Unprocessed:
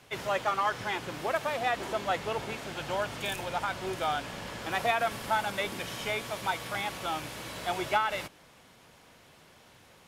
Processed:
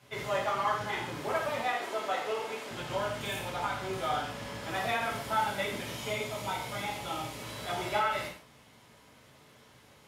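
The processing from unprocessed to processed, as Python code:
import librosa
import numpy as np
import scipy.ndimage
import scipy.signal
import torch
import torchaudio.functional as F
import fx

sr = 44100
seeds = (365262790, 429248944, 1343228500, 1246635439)

y = fx.highpass(x, sr, hz=340.0, slope=12, at=(1.62, 2.71))
y = fx.peak_eq(y, sr, hz=1600.0, db=-5.5, octaves=0.49, at=(5.92, 7.4))
y = fx.rev_gated(y, sr, seeds[0], gate_ms=190, shape='falling', drr_db=-5.0)
y = y * 10.0 ** (-7.5 / 20.0)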